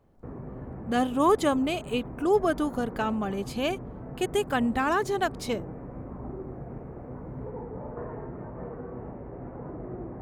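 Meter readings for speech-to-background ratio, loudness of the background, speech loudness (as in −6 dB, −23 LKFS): 12.5 dB, −40.0 LKFS, −27.5 LKFS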